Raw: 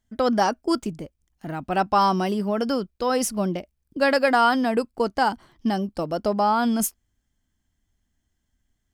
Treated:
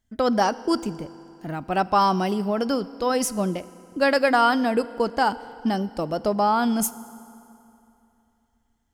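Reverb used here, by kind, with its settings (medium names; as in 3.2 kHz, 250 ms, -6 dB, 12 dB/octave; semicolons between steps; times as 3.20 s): FDN reverb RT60 2.9 s, high-frequency decay 0.75×, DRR 16 dB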